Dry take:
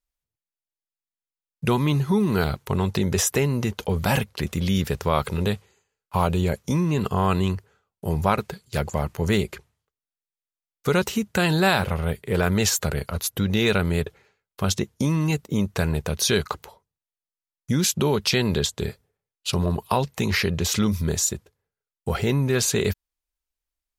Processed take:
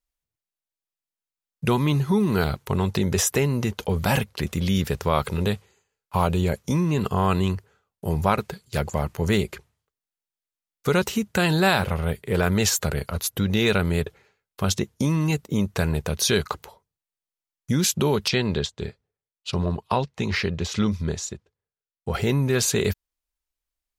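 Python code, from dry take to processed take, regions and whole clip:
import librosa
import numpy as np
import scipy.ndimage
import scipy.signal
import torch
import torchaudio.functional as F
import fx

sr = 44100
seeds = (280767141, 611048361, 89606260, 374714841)

y = fx.chain(x, sr, fx.lowpass(hz=5600.0, slope=12),
    fx.upward_expand(threshold_db=-38.0, expansion=1.5), at=(18.28, 22.14))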